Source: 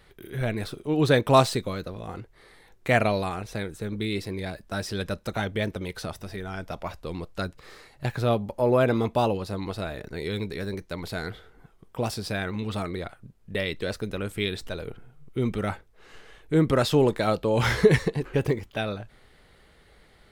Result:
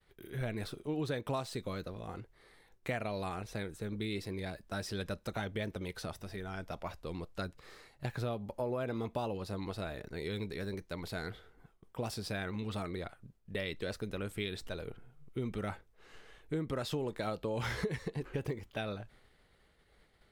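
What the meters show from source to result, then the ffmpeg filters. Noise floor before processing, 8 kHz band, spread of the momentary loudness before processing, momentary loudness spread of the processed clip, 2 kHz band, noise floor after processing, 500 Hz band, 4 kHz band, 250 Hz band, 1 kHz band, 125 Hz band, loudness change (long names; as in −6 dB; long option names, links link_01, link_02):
−57 dBFS, −10.5 dB, 15 LU, 9 LU, −11.5 dB, −67 dBFS, −13.0 dB, −10.5 dB, −11.5 dB, −13.5 dB, −11.5 dB, −12.5 dB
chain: -af "agate=range=-33dB:threshold=-51dB:ratio=3:detection=peak,acompressor=threshold=-25dB:ratio=12,volume=-7dB"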